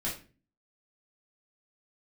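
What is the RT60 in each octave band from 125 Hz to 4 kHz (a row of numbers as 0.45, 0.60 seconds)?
0.60, 0.60, 0.40, 0.30, 0.35, 0.30 seconds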